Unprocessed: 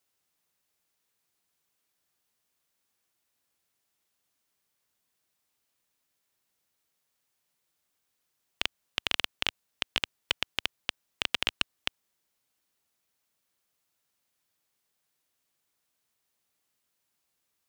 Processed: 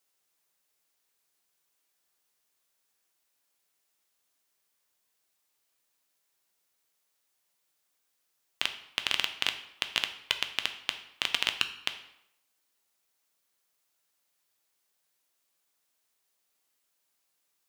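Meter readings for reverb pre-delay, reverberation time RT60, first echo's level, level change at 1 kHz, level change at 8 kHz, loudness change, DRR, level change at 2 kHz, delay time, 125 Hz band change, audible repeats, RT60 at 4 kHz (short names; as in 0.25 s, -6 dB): 7 ms, 0.75 s, none, +0.5 dB, +2.5 dB, +1.0 dB, 7.0 dB, +1.0 dB, none, -6.0 dB, none, 0.60 s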